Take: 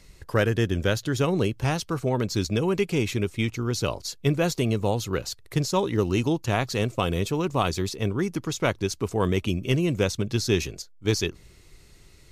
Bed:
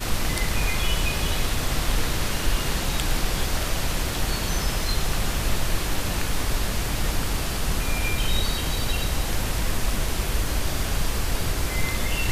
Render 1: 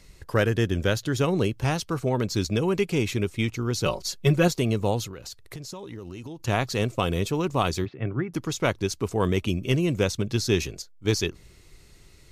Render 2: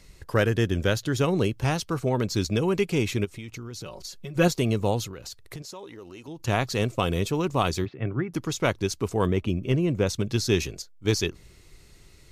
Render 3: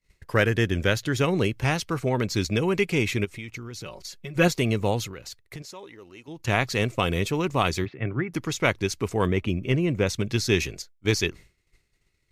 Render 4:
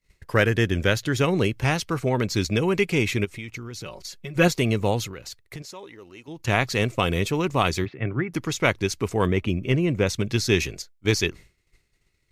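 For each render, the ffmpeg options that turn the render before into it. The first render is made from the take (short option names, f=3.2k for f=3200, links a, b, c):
-filter_complex "[0:a]asettb=1/sr,asplit=3[a][b][c];[a]atrim=end=3.854[d];[b]atrim=start=3.85:end=4.48,asetpts=PTS-STARTPTS,afade=t=in:d=0.004:c=qsin,afade=t=out:st=0.626:d=0.004:c=qsin,aecho=1:1:5.4:0.91,atrim=end_sample=27783[e];[c]atrim=start=4.476[f];[d][e]acrossfade=d=0.004:c1=hsin:c2=qsin[g];[g][f]acrossfade=d=0.004:c1=qsin:c2=hsin,asettb=1/sr,asplit=3[h][i][j];[h]atrim=end=5.054[k];[i]atrim=start=5.05:end=6.4,asetpts=PTS-STARTPTS,afade=t=in:d=0.004:c=qsin,afade=t=out:st=1.346:d=0.004:c=qsin,acompressor=threshold=-34dB:ratio=16:attack=3.2:release=140:knee=1:detection=peak[l];[j]atrim=start=6.396[m];[k][l]acrossfade=d=0.004:c1=hsin:c2=qsin[n];[n][m]acrossfade=d=0.004:c1=qsin:c2=hsin,asplit=3[o][p][q];[o]afade=t=out:st=7.84:d=0.02[r];[p]highpass=120,equalizer=f=130:t=q:w=4:g=9,equalizer=f=200:t=q:w=4:g=-7,equalizer=f=450:t=q:w=4:g=-9,equalizer=f=960:t=q:w=4:g=-8,lowpass=f=2.2k:w=0.5412,lowpass=f=2.2k:w=1.3066,afade=t=in:st=7.84:d=0.02,afade=t=out:st=8.33:d=0.02[s];[q]afade=t=in:st=8.33:d=0.02[t];[r][s][t]amix=inputs=3:normalize=0"
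-filter_complex "[0:a]asplit=3[a][b][c];[a]afade=t=out:st=3.24:d=0.02[d];[b]acompressor=threshold=-34dB:ratio=10:attack=3.2:release=140:knee=1:detection=peak,afade=t=in:st=3.24:d=0.02,afade=t=out:st=4.35:d=0.02[e];[c]afade=t=in:st=4.35:d=0.02[f];[d][e][f]amix=inputs=3:normalize=0,asettb=1/sr,asplit=3[g][h][i];[g]atrim=end=5.624[j];[h]atrim=start=5.62:end=6.28,asetpts=PTS-STARTPTS,afade=t=in:d=0.004:c=qsin,afade=t=out:st=0.656:d=0.004:c=qsin,bass=f=250:g=-12,treble=f=4k:g=-2[k];[i]atrim=start=6.276[l];[j][k]acrossfade=d=0.004:c1=hsin:c2=qsin[m];[m][l]acrossfade=d=0.004:c1=qsin:c2=hsin,asettb=1/sr,asplit=3[n][o][p];[n]atrim=end=9.264[q];[o]atrim=start=9.26:end=10.07,asetpts=PTS-STARTPTS,afade=t=in:d=0.004:c=qsin,afade=t=out:st=0.806:d=0.004:c=qsin,highshelf=f=2.8k:g=-12[r];[p]atrim=start=10.066[s];[q][r]acrossfade=d=0.004:c1=hsin:c2=qsin[t];[t][s]acrossfade=d=0.004:c1=qsin:c2=hsin"
-af "agate=range=-33dB:threshold=-38dB:ratio=3:detection=peak,equalizer=f=2.1k:w=1.8:g=7.5"
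-af "volume=1.5dB"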